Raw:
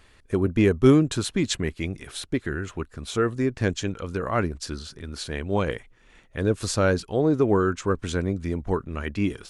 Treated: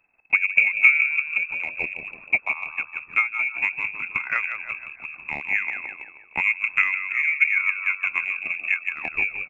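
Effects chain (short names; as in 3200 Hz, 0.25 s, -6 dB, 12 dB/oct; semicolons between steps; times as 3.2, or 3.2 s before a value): gate -42 dBFS, range -10 dB; frequency-shifting echo 0.157 s, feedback 50%, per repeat -36 Hz, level -4.5 dB; treble ducked by the level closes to 1000 Hz, closed at -18 dBFS; inverted band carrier 2600 Hz; transient shaper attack +11 dB, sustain -3 dB; gain -5 dB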